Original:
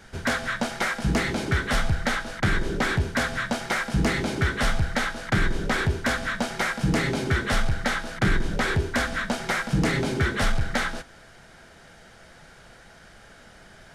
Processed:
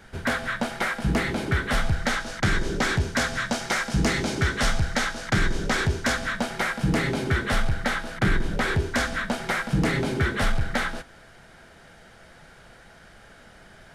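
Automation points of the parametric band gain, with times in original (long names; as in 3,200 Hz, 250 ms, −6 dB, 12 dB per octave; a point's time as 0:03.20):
parametric band 6,100 Hz 1.1 octaves
0:01.60 −5 dB
0:02.30 +5.5 dB
0:06.08 +5.5 dB
0:06.48 −3 dB
0:08.63 −3 dB
0:09.06 +3.5 dB
0:09.22 −3.5 dB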